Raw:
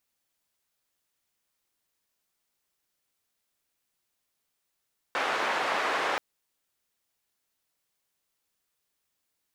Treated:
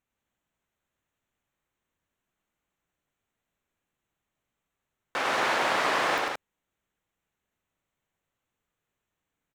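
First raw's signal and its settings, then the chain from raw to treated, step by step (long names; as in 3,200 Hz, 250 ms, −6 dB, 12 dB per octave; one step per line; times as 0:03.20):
band-limited noise 510–1,500 Hz, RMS −28.5 dBFS 1.03 s
adaptive Wiener filter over 9 samples
bass and treble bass +6 dB, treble +4 dB
loudspeakers that aren't time-aligned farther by 34 metres −3 dB, 60 metres −4 dB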